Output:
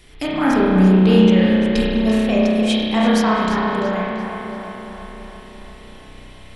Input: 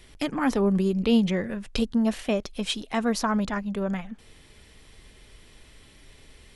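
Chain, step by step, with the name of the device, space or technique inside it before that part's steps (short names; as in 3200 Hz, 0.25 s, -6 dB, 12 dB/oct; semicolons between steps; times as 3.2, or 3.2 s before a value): dub delay into a spring reverb (darkening echo 0.339 s, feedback 65%, low-pass 4600 Hz, level -7 dB; spring tank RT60 2 s, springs 32 ms, chirp 20 ms, DRR -5.5 dB); gain +2.5 dB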